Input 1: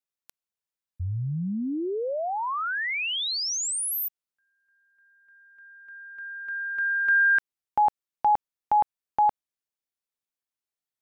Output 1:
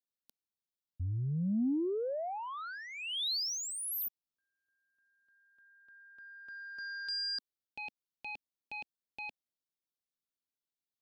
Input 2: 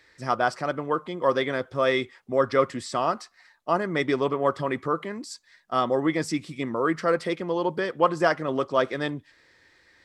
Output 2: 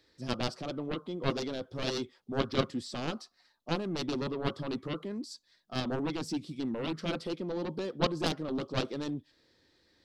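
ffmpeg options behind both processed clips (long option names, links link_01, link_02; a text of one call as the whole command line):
ffmpeg -i in.wav -af "aeval=exprs='0.501*(cos(1*acos(clip(val(0)/0.501,-1,1)))-cos(1*PI/2))+0.158*(cos(7*acos(clip(val(0)/0.501,-1,1)))-cos(7*PI/2))':channel_layout=same,equalizer=frequency=250:width_type=o:width=1:gain=5,equalizer=frequency=1000:width_type=o:width=1:gain=-4,equalizer=frequency=2000:width_type=o:width=1:gain=-12,equalizer=frequency=4000:width_type=o:width=1:gain=5,equalizer=frequency=8000:width_type=o:width=1:gain=-6,volume=-6.5dB" out.wav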